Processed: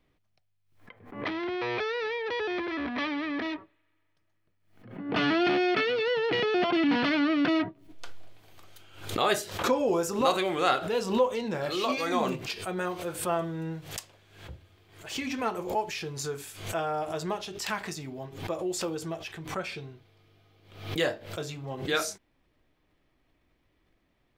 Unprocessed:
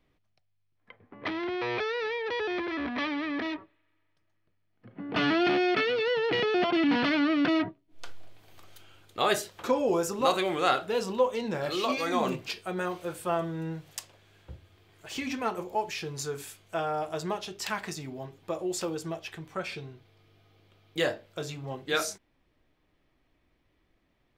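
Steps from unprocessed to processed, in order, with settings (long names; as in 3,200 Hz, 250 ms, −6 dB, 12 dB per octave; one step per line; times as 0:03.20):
background raised ahead of every attack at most 94 dB per second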